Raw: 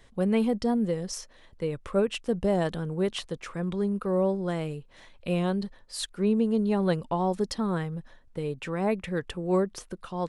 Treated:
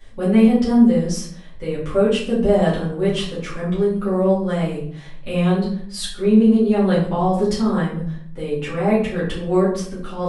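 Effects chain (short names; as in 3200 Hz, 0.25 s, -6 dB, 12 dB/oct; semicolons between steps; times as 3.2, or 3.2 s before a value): shoebox room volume 79 m³, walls mixed, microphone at 2.3 m; gain -2.5 dB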